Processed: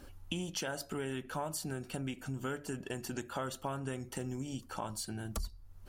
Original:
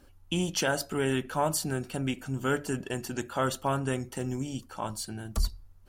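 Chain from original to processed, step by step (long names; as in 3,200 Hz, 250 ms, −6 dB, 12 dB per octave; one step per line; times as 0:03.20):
downward compressor 4 to 1, threshold −43 dBFS, peak gain reduction 18 dB
level +5 dB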